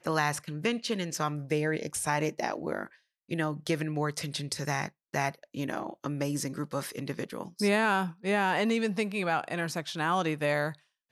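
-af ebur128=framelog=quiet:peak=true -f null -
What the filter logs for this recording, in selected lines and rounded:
Integrated loudness:
  I:         -30.9 LUFS
  Threshold: -41.0 LUFS
Loudness range:
  LRA:         4.6 LU
  Threshold: -51.2 LUFS
  LRA low:   -33.4 LUFS
  LRA high:  -28.8 LUFS
True peak:
  Peak:      -12.9 dBFS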